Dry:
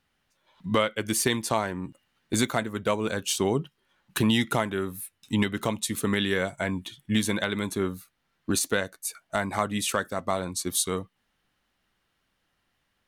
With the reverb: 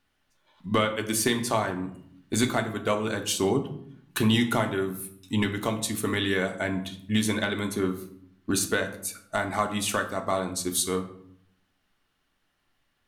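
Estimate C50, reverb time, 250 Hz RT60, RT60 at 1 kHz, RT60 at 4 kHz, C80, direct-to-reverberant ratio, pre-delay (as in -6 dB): 11.5 dB, 0.65 s, 1.0 s, 0.60 s, 0.45 s, 14.5 dB, 4.5 dB, 3 ms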